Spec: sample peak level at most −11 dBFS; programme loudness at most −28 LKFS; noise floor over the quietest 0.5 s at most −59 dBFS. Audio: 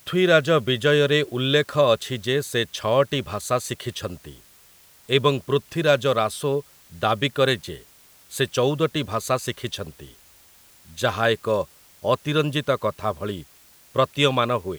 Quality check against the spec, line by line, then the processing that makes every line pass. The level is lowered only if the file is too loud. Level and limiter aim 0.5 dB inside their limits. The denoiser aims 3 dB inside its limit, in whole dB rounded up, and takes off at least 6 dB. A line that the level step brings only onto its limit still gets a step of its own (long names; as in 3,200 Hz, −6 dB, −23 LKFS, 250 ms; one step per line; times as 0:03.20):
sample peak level −4.5 dBFS: out of spec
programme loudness −22.5 LKFS: out of spec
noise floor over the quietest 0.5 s −53 dBFS: out of spec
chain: broadband denoise 6 dB, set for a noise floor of −53 dBFS
level −6 dB
brickwall limiter −11.5 dBFS